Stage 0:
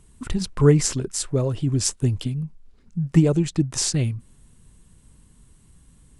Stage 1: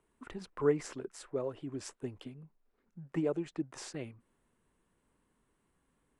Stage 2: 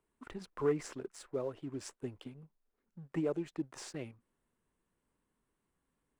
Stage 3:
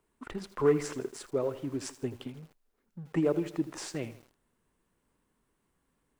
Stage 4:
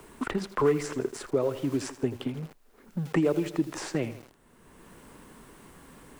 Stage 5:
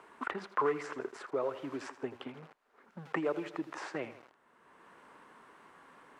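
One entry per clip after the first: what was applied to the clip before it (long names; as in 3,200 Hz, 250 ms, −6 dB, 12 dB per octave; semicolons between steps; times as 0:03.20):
three-way crossover with the lows and the highs turned down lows −20 dB, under 290 Hz, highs −16 dB, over 2,400 Hz; level −8.5 dB
leveller curve on the samples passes 1; level −5 dB
feedback echo at a low word length 81 ms, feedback 55%, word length 9 bits, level −14 dB; level +6.5 dB
multiband upward and downward compressor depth 70%; level +5 dB
resonant band-pass 1,200 Hz, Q 0.95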